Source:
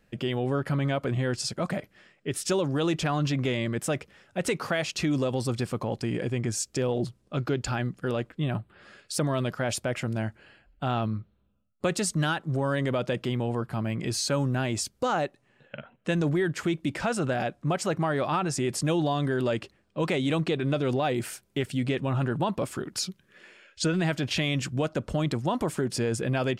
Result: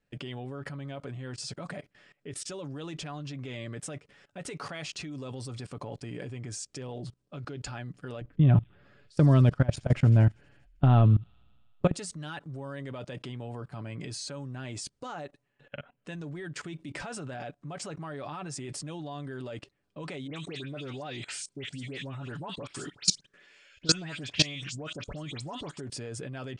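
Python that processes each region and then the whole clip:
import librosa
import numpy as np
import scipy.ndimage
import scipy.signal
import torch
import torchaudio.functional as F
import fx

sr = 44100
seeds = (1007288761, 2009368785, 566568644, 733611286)

y = fx.chain(x, sr, fx.riaa(side='playback'),
    fx.echo_wet_highpass(ms=79, feedback_pct=76, hz=3100.0, wet_db=-14), at=(8.21, 11.94))
y = fx.chain(y, sr, fx.lowpass(hz=8100.0, slope=24),
    fx.high_shelf(hz=2500.0, db=10.5),
    fx.dispersion(late='highs', ms=96.0, hz=2400.0), at=(20.27, 25.8))
y = scipy.signal.sosfilt(scipy.signal.cheby1(4, 1.0, 9400.0, 'lowpass', fs=sr, output='sos'), y)
y = y + 0.41 * np.pad(y, (int(7.0 * sr / 1000.0), 0))[:len(y)]
y = fx.level_steps(y, sr, step_db=20)
y = y * librosa.db_to_amplitude(1.5)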